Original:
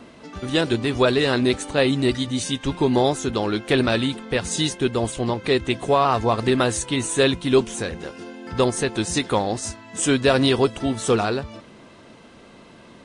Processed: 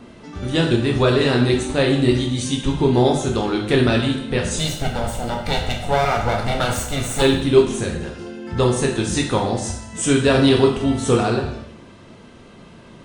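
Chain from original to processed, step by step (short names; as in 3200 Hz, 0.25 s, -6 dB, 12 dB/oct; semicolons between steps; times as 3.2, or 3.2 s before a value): 4.58–7.22 minimum comb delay 1.4 ms; low shelf 170 Hz +9.5 dB; reverb RT60 0.75 s, pre-delay 5 ms, DRR 0.5 dB; gain -2 dB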